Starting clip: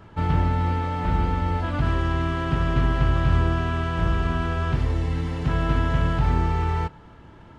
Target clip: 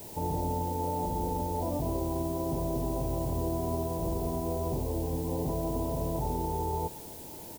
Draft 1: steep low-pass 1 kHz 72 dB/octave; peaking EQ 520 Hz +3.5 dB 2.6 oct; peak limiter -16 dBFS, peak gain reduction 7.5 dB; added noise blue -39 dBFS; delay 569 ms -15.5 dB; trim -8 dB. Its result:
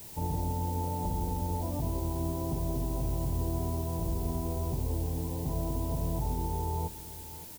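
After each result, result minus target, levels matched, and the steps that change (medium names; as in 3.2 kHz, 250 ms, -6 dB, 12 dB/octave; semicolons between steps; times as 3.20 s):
echo-to-direct +10.5 dB; 500 Hz band -5.0 dB
change: delay 569 ms -26 dB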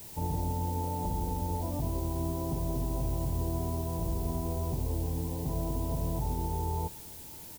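500 Hz band -4.5 dB
change: peaking EQ 520 Hz +14 dB 2.6 oct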